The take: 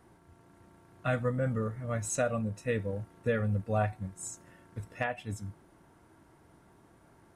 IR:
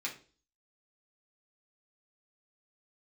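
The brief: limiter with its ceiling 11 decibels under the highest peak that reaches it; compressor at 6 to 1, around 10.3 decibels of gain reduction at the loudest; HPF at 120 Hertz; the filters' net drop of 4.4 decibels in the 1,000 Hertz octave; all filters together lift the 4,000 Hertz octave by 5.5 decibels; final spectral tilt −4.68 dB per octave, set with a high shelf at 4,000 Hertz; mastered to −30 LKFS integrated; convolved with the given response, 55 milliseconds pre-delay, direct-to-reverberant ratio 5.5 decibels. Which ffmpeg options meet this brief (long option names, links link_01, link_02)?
-filter_complex "[0:a]highpass=120,equalizer=frequency=1000:width_type=o:gain=-8,highshelf=frequency=4000:gain=7,equalizer=frequency=4000:width_type=o:gain=3.5,acompressor=threshold=-37dB:ratio=6,alimiter=level_in=10dB:limit=-24dB:level=0:latency=1,volume=-10dB,asplit=2[link_01][link_02];[1:a]atrim=start_sample=2205,adelay=55[link_03];[link_02][link_03]afir=irnorm=-1:irlink=0,volume=-8dB[link_04];[link_01][link_04]amix=inputs=2:normalize=0,volume=14dB"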